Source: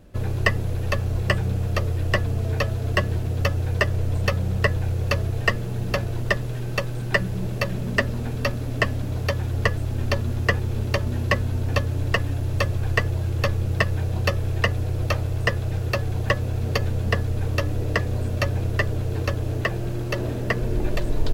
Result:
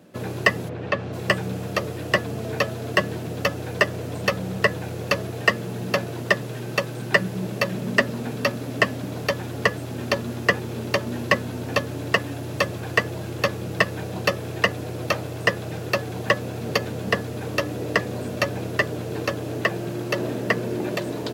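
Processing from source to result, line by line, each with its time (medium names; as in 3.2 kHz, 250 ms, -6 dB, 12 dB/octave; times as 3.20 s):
0.68–1.12 s: low-pass 2.3 kHz -> 4 kHz
whole clip: high-pass 150 Hz 24 dB/octave; trim +3 dB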